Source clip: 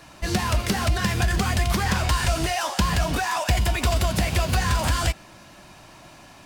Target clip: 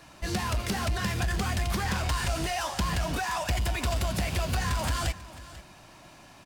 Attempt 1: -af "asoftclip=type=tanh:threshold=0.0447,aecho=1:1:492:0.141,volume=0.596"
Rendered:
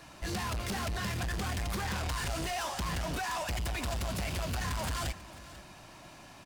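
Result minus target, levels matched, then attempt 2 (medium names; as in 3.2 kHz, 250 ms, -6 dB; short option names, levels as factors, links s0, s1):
saturation: distortion +10 dB
-af "asoftclip=type=tanh:threshold=0.15,aecho=1:1:492:0.141,volume=0.596"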